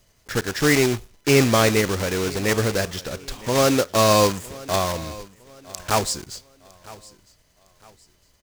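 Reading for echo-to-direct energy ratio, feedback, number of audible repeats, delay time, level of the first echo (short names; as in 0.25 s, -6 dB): -20.0 dB, 35%, 2, 0.958 s, -20.5 dB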